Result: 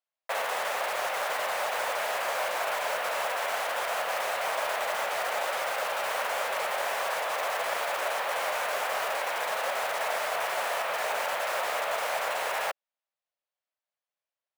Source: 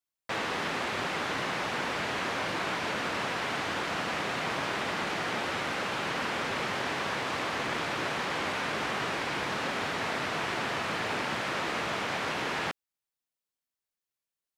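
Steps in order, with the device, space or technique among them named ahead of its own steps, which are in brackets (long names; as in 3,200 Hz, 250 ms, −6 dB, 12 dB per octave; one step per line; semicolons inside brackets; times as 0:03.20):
early digital voice recorder (band-pass filter 260–3,600 Hz; one scale factor per block 3 bits)
low shelf with overshoot 420 Hz −11.5 dB, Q 3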